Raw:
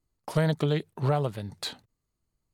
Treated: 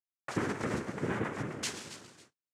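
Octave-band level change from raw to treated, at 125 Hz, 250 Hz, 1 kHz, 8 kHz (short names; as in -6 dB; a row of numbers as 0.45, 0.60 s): -12.5, -4.5, -5.0, +4.5 dB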